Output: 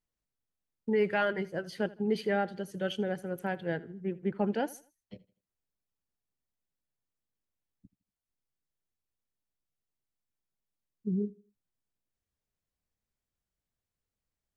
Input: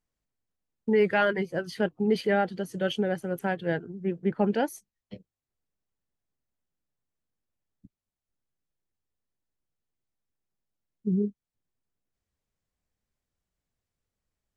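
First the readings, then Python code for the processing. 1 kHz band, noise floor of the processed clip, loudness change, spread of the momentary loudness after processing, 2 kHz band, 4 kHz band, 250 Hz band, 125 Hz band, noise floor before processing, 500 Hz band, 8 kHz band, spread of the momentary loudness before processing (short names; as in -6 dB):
-5.0 dB, under -85 dBFS, -5.0 dB, 9 LU, -5.0 dB, -5.0 dB, -5.0 dB, -5.0 dB, under -85 dBFS, -5.0 dB, -5.0 dB, 9 LU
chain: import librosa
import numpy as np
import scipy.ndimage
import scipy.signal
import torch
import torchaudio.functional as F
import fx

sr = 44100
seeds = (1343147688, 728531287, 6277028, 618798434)

y = fx.echo_feedback(x, sr, ms=80, feedback_pct=35, wet_db=-20.5)
y = F.gain(torch.from_numpy(y), -5.0).numpy()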